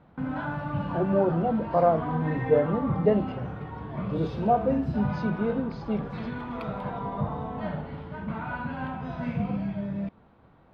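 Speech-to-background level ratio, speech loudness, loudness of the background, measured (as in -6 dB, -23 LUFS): 6.5 dB, -27.0 LUFS, -33.5 LUFS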